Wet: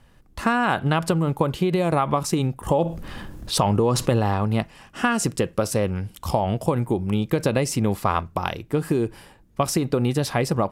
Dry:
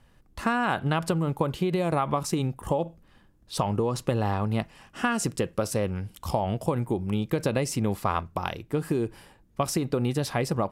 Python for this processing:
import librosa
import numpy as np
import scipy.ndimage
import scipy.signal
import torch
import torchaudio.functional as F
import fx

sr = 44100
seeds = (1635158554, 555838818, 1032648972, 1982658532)

y = fx.env_flatten(x, sr, amount_pct=50, at=(2.68, 4.18), fade=0.02)
y = y * librosa.db_to_amplitude(4.5)